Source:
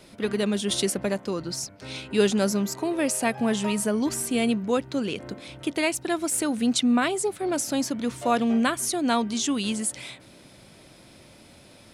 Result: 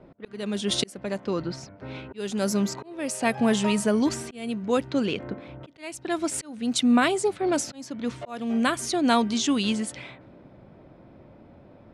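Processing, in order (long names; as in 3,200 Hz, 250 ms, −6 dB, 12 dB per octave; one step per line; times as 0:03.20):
low-pass that shuts in the quiet parts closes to 910 Hz, open at −19.5 dBFS
volume swells 541 ms
level +2.5 dB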